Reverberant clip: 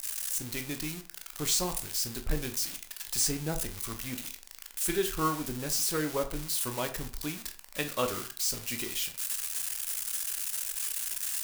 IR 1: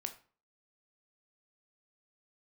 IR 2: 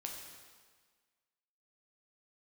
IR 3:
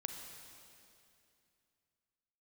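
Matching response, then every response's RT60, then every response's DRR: 1; 0.40, 1.6, 2.6 seconds; 6.0, 0.5, 4.0 decibels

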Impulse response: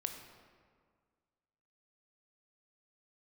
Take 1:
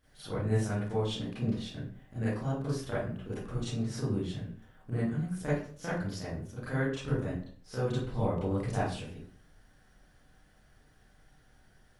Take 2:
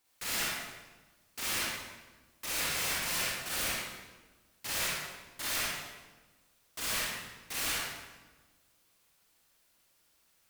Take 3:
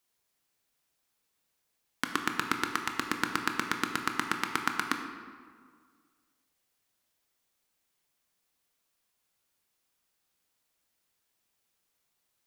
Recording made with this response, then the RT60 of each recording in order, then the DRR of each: 3; 0.50, 1.3, 1.8 seconds; −11.5, −7.0, 4.5 decibels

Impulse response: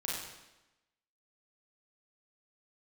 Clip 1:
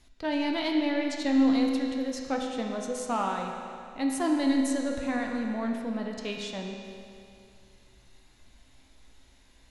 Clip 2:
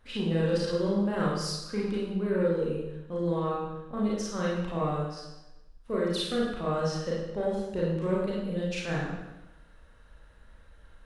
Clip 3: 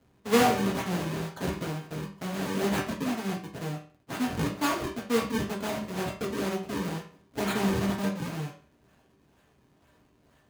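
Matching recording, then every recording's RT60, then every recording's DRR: 2; 2.5, 1.0, 0.40 seconds; 0.5, −5.5, −3.0 decibels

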